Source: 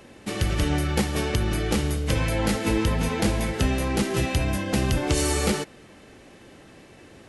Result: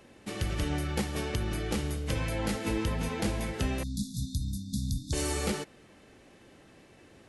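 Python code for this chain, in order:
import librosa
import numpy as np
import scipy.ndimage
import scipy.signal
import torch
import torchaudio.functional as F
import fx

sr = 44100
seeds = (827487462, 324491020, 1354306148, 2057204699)

y = fx.brickwall_bandstop(x, sr, low_hz=280.0, high_hz=3400.0, at=(3.83, 5.13))
y = y * librosa.db_to_amplitude(-7.5)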